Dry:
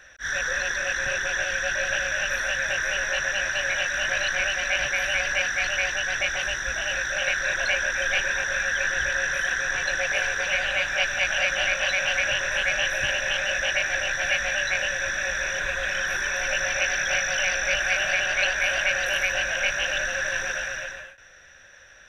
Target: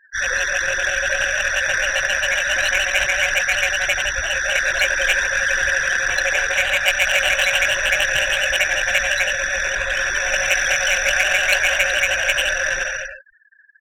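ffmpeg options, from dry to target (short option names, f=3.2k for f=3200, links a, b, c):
-filter_complex "[0:a]acrossover=split=7200[a][b];[b]acompressor=threshold=-56dB:ratio=4:attack=1:release=60[c];[a][c]amix=inputs=2:normalize=0,afftfilt=real='re*gte(hypot(re,im),0.0178)':imag='im*gte(hypot(re,im),0.0178)':win_size=1024:overlap=0.75,atempo=1.6,equalizer=f=160:w=6.6:g=-10,acrossover=split=110|630|4900[d][e][f][g];[f]adynamicsmooth=sensitivity=2.5:basefreq=3.6k[h];[d][e][h][g]amix=inputs=4:normalize=0,aemphasis=mode=production:type=50fm,volume=6.5dB"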